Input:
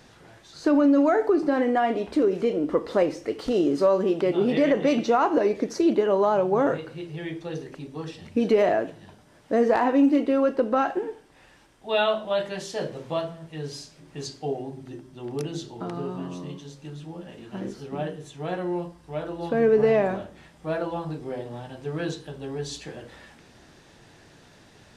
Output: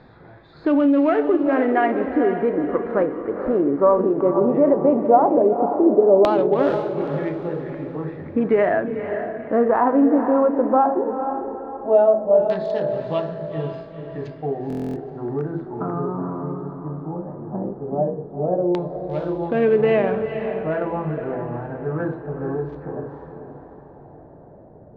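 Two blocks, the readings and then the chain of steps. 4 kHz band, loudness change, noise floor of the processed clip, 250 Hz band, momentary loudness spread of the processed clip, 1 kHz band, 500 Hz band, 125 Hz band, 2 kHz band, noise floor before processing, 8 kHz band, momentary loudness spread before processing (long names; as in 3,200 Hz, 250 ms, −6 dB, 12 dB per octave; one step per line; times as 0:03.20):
can't be measured, +4.0 dB, −45 dBFS, +3.5 dB, 14 LU, +5.5 dB, +5.0 dB, +6.0 dB, +2.0 dB, −54 dBFS, below −15 dB, 17 LU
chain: adaptive Wiener filter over 15 samples
in parallel at +2.5 dB: downward compressor, threshold −31 dBFS, peak gain reduction 15 dB
on the sum: high-shelf EQ 5,900 Hz −8.5 dB
harmonic and percussive parts rebalanced percussive −4 dB
auto-filter low-pass saw down 0.16 Hz 540–3,800 Hz
on a send: feedback delay with all-pass diffusion 475 ms, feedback 41%, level −7.5 dB
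on the sum: buffer that repeats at 0:14.68, samples 1,024, times 11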